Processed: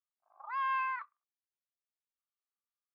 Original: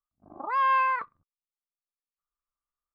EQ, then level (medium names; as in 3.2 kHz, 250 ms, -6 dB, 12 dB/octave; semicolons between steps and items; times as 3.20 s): Bessel high-pass 1.3 kHz, order 6; distance through air 150 m; -4.5 dB